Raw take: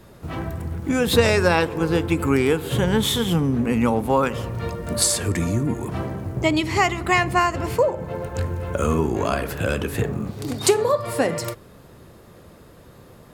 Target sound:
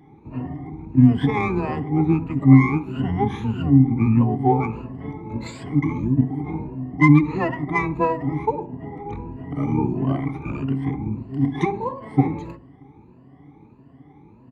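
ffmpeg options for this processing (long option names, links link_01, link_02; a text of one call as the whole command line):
ffmpeg -i in.wav -filter_complex "[0:a]afftfilt=real='re*pow(10,23/40*sin(2*PI*(1.4*log(max(b,1)*sr/1024/100)/log(2)-(1.7)*(pts-256)/sr)))':imag='im*pow(10,23/40*sin(2*PI*(1.4*log(max(b,1)*sr/1024/100)/log(2)-(1.7)*(pts-256)/sr)))':win_size=1024:overlap=0.75,highshelf=frequency=11000:gain=-9.5,bandreject=frequency=97.66:width_type=h:width=4,bandreject=frequency=195.32:width_type=h:width=4,afreqshift=16,asplit=3[link_01][link_02][link_03];[link_01]bandpass=frequency=300:width_type=q:width=8,volume=0dB[link_04];[link_02]bandpass=frequency=870:width_type=q:width=8,volume=-6dB[link_05];[link_03]bandpass=frequency=2240:width_type=q:width=8,volume=-9dB[link_06];[link_04][link_05][link_06]amix=inputs=3:normalize=0,asplit=2[link_07][link_08];[link_08]asetrate=22050,aresample=44100,atempo=2,volume=-1dB[link_09];[link_07][link_09]amix=inputs=2:normalize=0,asplit=2[link_10][link_11];[link_11]adynamicsmooth=sensitivity=2:basefreq=3600,volume=-0.5dB[link_12];[link_10][link_12]amix=inputs=2:normalize=0,asplit=2[link_13][link_14];[link_14]adelay=62,lowpass=frequency=1300:poles=1,volume=-15dB,asplit=2[link_15][link_16];[link_16]adelay=62,lowpass=frequency=1300:poles=1,volume=0.46,asplit=2[link_17][link_18];[link_18]adelay=62,lowpass=frequency=1300:poles=1,volume=0.46,asplit=2[link_19][link_20];[link_20]adelay=62,lowpass=frequency=1300:poles=1,volume=0.46[link_21];[link_13][link_15][link_17][link_19][link_21]amix=inputs=5:normalize=0,asetrate=40517,aresample=44100,adynamicequalizer=threshold=0.00447:dfrequency=6300:dqfactor=0.7:tfrequency=6300:tqfactor=0.7:attack=5:release=100:ratio=0.375:range=2:mode=boostabove:tftype=highshelf,volume=-1dB" out.wav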